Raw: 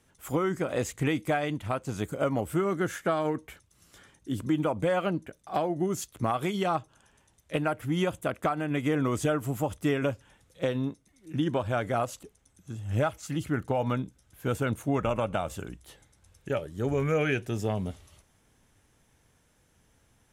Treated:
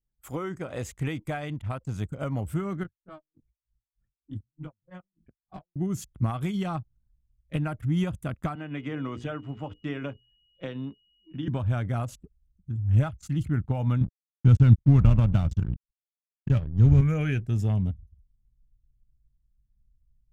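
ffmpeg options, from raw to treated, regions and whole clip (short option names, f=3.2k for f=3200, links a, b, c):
-filter_complex "[0:a]asettb=1/sr,asplit=3[a][b][c];[a]atrim=end=2.834[d];[b]atrim=start=2.83:end=5.76,asetpts=PTS-STARTPTS,afade=t=in:d=0.004:c=qsin,afade=t=out:st=2.926:d=0.004:c=qsin,acompressor=threshold=-28dB:ratio=12:attack=3.2:release=140:knee=1:detection=peak,flanger=delay=17.5:depth=5.4:speed=1.2,aeval=exprs='val(0)*pow(10,-39*(0.5-0.5*cos(2*PI*3.3*n/s))/20)':c=same[e];[c]atrim=start=5.756[f];[d][e]acrossfade=d=0.004:c1=hsin:c2=qsin[g];[g][f]acrossfade=d=0.004:c1=qsin:c2=hsin,asettb=1/sr,asplit=3[h][i][j];[h]atrim=end=8.554[k];[i]atrim=start=8.55:end=11.48,asetpts=PTS-STARTPTS,afade=t=in:d=0.004:c=qsin,afade=t=out:st=2.926:d=0.004:c=qsin,acrossover=split=250 4900:gain=0.2 1 0.0708[l][m][n];[l][m][n]amix=inputs=3:normalize=0,bandreject=f=60:t=h:w=6,bandreject=f=120:t=h:w=6,bandreject=f=180:t=h:w=6,bandreject=f=240:t=h:w=6,bandreject=f=300:t=h:w=6,bandreject=f=360:t=h:w=6,bandreject=f=420:t=h:w=6,bandreject=f=480:t=h:w=6,aeval=exprs='val(0)+0.00251*sin(2*PI*2900*n/s)':c=same[o];[j]atrim=start=11.476[p];[k][o]acrossfade=d=0.004:c1=hsin:c2=qsin[q];[q][p]acrossfade=d=0.004:c1=qsin:c2=hsin,asettb=1/sr,asplit=3[r][s][t];[r]atrim=end=14.014[u];[s]atrim=start=14.01:end=17.01,asetpts=PTS-STARTPTS,afade=t=in:d=0.004:c=qsin,afade=t=out:st=2.996:d=0.004:c=qsin,lowpass=f=5.8k:w=0.5412,lowpass=f=5.8k:w=1.3066,bass=f=250:g=11,treble=f=4k:g=9,aeval=exprs='sgn(val(0))*max(abs(val(0))-0.0133,0)':c=same[v];[t]atrim=start=17.006[w];[u][v]acrossfade=d=0.004:c1=hsin:c2=qsin[x];[x][w]acrossfade=d=0.004:c1=qsin:c2=hsin,anlmdn=0.0631,asubboost=boost=7:cutoff=170,volume=-5dB"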